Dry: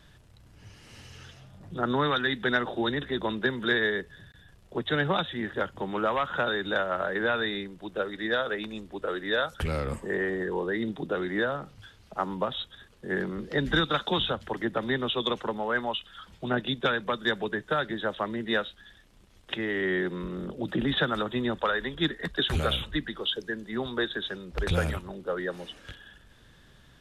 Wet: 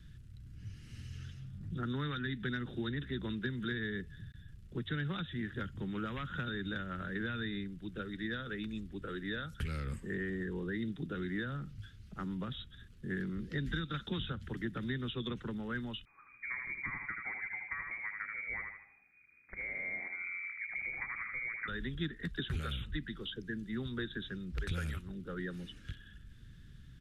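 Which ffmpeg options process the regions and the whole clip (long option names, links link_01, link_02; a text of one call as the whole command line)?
ffmpeg -i in.wav -filter_complex "[0:a]asettb=1/sr,asplit=3[link_01][link_02][link_03];[link_01]atrim=end=16.054[link_04];[link_02]atrim=start=16.05:end=21.68,asetpts=PTS-STARTPTS,afade=type=in:duration=0.004:curve=qsin,afade=type=out:start_time=5.626:duration=0.004:curve=qsin,aecho=1:1:78|156|234|312|390:0.531|0.202|0.0767|0.0291|0.0111,atrim=end_sample=248283,lowpass=frequency=2100:width_type=q:width=0.5098,lowpass=frequency=2100:width_type=q:width=0.6013,lowpass=frequency=2100:width_type=q:width=0.9,lowpass=frequency=2100:width_type=q:width=2.563,afreqshift=-2500[link_05];[link_03]atrim=start=21.676[link_06];[link_04][link_05]acrossfade=duration=0.004:curve1=hsin:curve2=qsin[link_07];[link_07][link_06]acrossfade=duration=0.004:curve1=qsin:curve2=hsin,firequalizer=gain_entry='entry(130,0);entry(630,-28);entry(950,-26);entry(1400,-13)':delay=0.05:min_phase=1,acrossover=split=400|2500[link_08][link_09][link_10];[link_08]acompressor=threshold=-42dB:ratio=4[link_11];[link_09]acompressor=threshold=-45dB:ratio=4[link_12];[link_10]acompressor=threshold=-53dB:ratio=4[link_13];[link_11][link_12][link_13]amix=inputs=3:normalize=0,volume=5dB" out.wav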